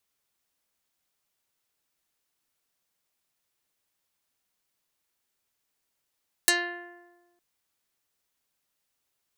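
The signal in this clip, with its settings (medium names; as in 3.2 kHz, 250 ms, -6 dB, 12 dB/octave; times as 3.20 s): plucked string F4, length 0.91 s, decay 1.31 s, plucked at 0.29, dark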